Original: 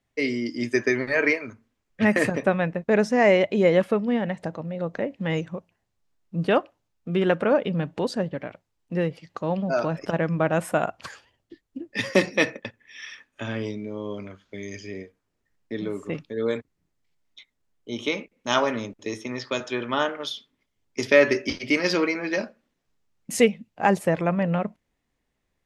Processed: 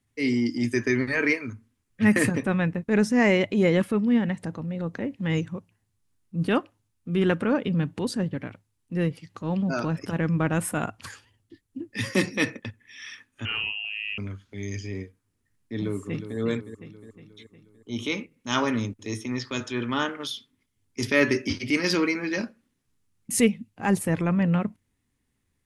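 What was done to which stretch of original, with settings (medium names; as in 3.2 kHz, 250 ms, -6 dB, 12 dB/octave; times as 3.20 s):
13.45–14.18 s: frequency inversion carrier 3 kHz
15.74–16.38 s: echo throw 360 ms, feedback 55%, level -9.5 dB
whole clip: fifteen-band graphic EQ 100 Hz +12 dB, 250 Hz +5 dB, 630 Hz -9 dB, 10 kHz +11 dB; transient shaper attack -6 dB, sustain -1 dB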